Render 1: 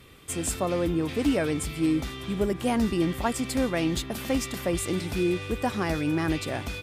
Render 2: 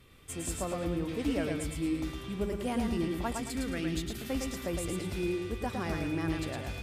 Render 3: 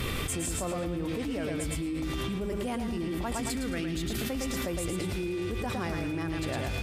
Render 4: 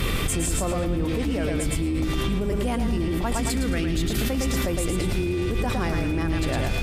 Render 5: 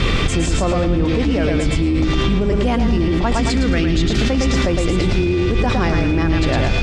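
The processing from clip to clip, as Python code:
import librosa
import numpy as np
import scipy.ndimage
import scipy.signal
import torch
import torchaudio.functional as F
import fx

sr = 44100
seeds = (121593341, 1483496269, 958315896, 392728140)

y1 = fx.spec_box(x, sr, start_s=3.41, length_s=0.88, low_hz=490.0, high_hz=1200.0, gain_db=-8)
y1 = fx.low_shelf(y1, sr, hz=70.0, db=7.5)
y1 = fx.echo_feedback(y1, sr, ms=110, feedback_pct=33, wet_db=-4.0)
y1 = F.gain(torch.from_numpy(y1), -8.5).numpy()
y2 = fx.env_flatten(y1, sr, amount_pct=100)
y2 = F.gain(torch.from_numpy(y2), -5.0).numpy()
y3 = fx.octave_divider(y2, sr, octaves=2, level_db=0.0)
y3 = F.gain(torch.from_numpy(y3), 6.0).numpy()
y4 = scipy.signal.sosfilt(scipy.signal.butter(4, 6300.0, 'lowpass', fs=sr, output='sos'), y3)
y4 = F.gain(torch.from_numpy(y4), 8.0).numpy()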